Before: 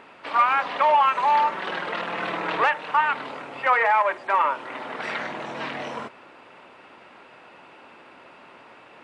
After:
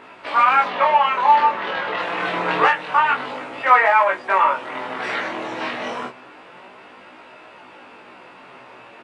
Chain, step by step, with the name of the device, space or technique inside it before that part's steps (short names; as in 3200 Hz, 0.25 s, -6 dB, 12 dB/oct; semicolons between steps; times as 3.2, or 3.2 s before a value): 0.68–1.99 air absorption 89 m; double-tracked vocal (doubler 16 ms -4 dB; chorus 0.27 Hz, delay 19 ms, depth 6.2 ms); gain +6.5 dB